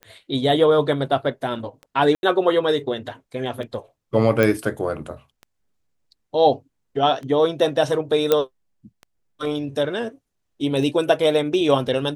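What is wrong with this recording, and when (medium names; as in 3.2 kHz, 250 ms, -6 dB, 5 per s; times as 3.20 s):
tick 33 1/3 rpm -24 dBFS
2.15–2.23 s: dropout 81 ms
4.43 s: pop
8.32 s: pop -4 dBFS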